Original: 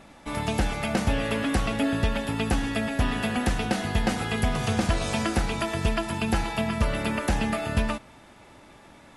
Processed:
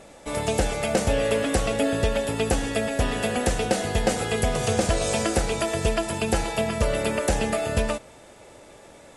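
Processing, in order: graphic EQ 250/500/1000/8000 Hz -4/+11/-3/+10 dB

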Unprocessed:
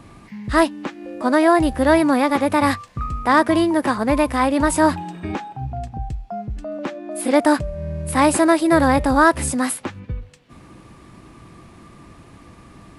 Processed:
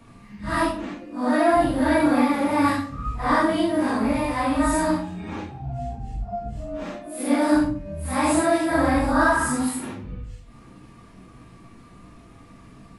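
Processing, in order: phase randomisation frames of 200 ms; 6.35–6.99 s: treble shelf 6.6 kHz +7 dB; 9.33–9.76 s: spectral replace 820–2800 Hz both; simulated room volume 460 m³, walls furnished, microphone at 1.7 m; trim -6.5 dB

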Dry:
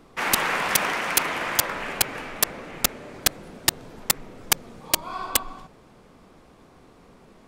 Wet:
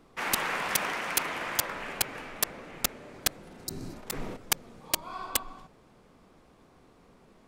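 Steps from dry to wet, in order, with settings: 3.47–4.37 s: transient shaper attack -9 dB, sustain +12 dB; 3.52–3.99 s: spectral replace 410–3800 Hz; trim -6.5 dB

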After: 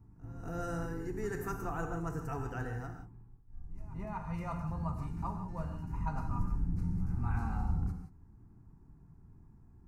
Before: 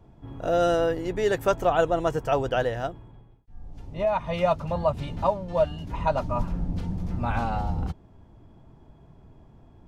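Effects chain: peaking EQ 1.9 kHz -7.5 dB 2.9 oct; static phaser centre 1.4 kHz, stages 4; pre-echo 240 ms -18.5 dB; gated-style reverb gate 200 ms flat, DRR 4 dB; trim -5.5 dB

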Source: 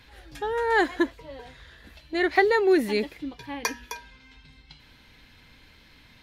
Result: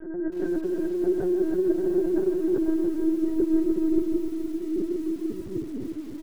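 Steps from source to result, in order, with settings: local Wiener filter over 41 samples; spectral gate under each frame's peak -20 dB strong; Paulstretch 5.9×, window 1.00 s, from 2.21 s; band-pass filter 450 Hz, Q 3.3; spring tank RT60 1.8 s, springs 31 ms, chirp 25 ms, DRR 8 dB; tremolo saw up 3.5 Hz, depth 75%; on a send: delay 174 ms -3.5 dB; on the sum: formant shift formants -3 st; LPC vocoder at 8 kHz pitch kept; bit-crushed delay 299 ms, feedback 35%, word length 8-bit, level -9.5 dB; trim +4 dB

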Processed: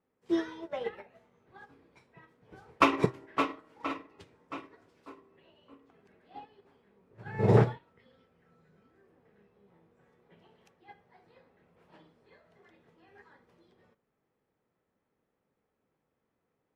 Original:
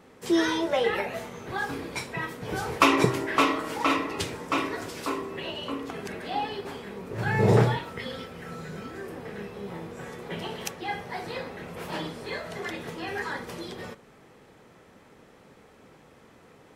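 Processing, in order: low-pass 2.1 kHz 6 dB/octave; upward expansion 2.5:1, over -34 dBFS

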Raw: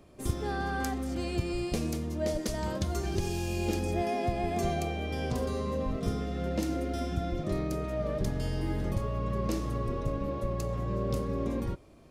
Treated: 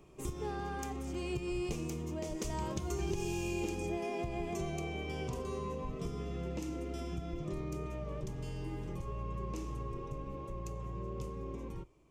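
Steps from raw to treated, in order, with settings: Doppler pass-by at 3.36 s, 6 m/s, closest 4.3 m; compression 5:1, threshold -46 dBFS, peak gain reduction 18 dB; rippled EQ curve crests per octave 0.72, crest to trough 8 dB; trim +10 dB

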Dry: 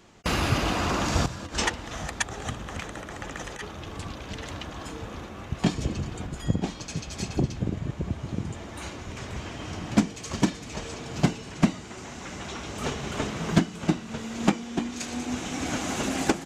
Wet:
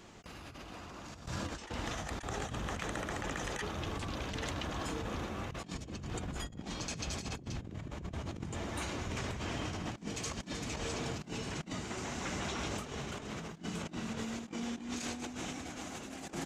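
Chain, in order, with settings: compressor with a negative ratio -37 dBFS, ratio -1; trim -5 dB

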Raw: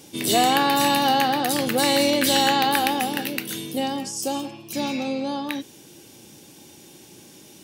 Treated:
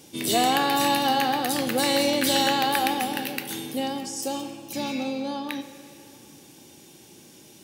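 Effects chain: plate-style reverb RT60 3 s, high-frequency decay 0.75×, DRR 11 dB; trim -3 dB

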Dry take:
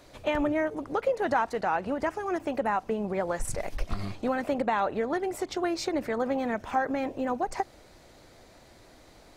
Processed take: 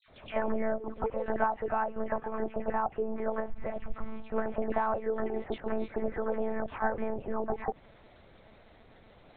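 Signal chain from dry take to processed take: low-pass that closes with the level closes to 1.6 kHz, closed at -27.5 dBFS; phase dispersion lows, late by 97 ms, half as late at 1.7 kHz; monotone LPC vocoder at 8 kHz 220 Hz; trim -2 dB

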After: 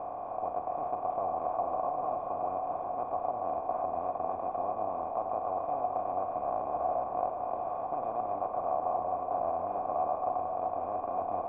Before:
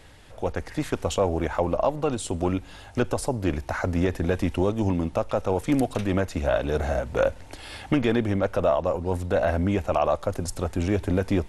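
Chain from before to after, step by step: spectral levelling over time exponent 0.2; cascade formant filter a; two-band feedback delay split 650 Hz, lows 396 ms, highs 262 ms, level -6 dB; trim -6 dB

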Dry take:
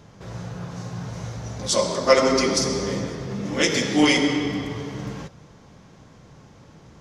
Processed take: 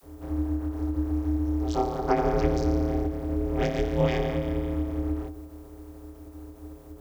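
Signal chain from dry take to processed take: 2.38–2.85 s: octave divider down 1 oct, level -2 dB; on a send at -17 dB: reverberation RT60 0.75 s, pre-delay 3 ms; on the sum: vocoder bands 32, saw 115 Hz; ring modulator 190 Hz; in parallel at +2.5 dB: compression, threshold -33 dBFS, peak gain reduction 17.5 dB; on the sum: treble shelf 3.7 kHz -7.5 dB; added noise blue -61 dBFS; endings held to a fixed fall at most 120 dB/s; trim -2 dB

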